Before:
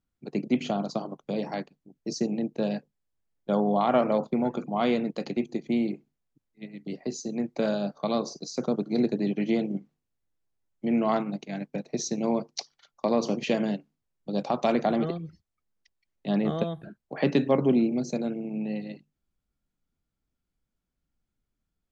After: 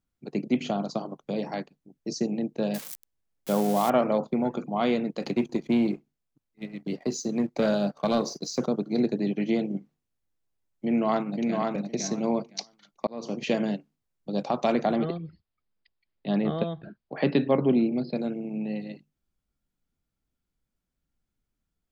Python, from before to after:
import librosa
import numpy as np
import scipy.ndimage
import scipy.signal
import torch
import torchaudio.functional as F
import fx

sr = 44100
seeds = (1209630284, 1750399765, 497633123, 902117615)

y = fx.crossing_spikes(x, sr, level_db=-23.5, at=(2.74, 3.9))
y = fx.leveller(y, sr, passes=1, at=(5.22, 8.66))
y = fx.echo_throw(y, sr, start_s=10.86, length_s=0.75, ms=510, feedback_pct=15, wet_db=-3.0)
y = fx.brickwall_lowpass(y, sr, high_hz=5200.0, at=(14.95, 18.18))
y = fx.edit(y, sr, fx.fade_in_span(start_s=13.07, length_s=0.41), tone=tone)